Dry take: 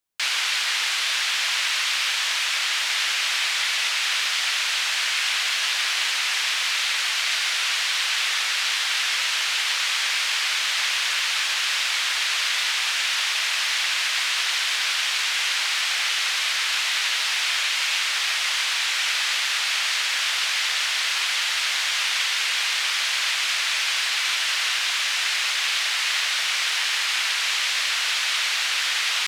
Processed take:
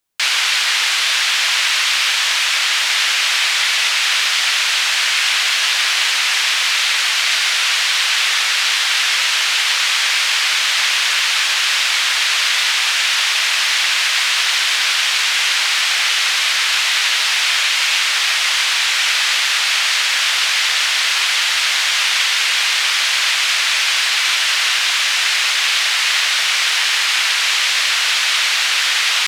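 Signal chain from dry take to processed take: 13.89–14.63 s: companded quantiser 8-bit; trim +7.5 dB

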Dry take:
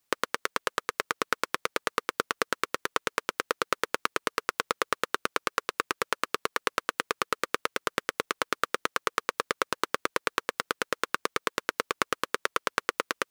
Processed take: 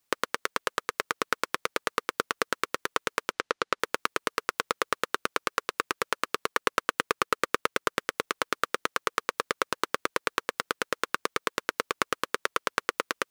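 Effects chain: 3.32–3.80 s: low-pass 6 kHz 12 dB/octave; 6.52–7.97 s: waveshaping leveller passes 1

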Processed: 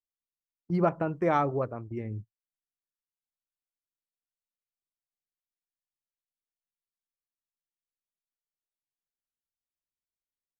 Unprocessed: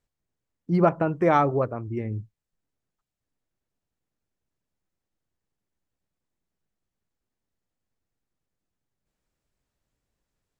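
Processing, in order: gate -33 dBFS, range -22 dB; trim -5.5 dB

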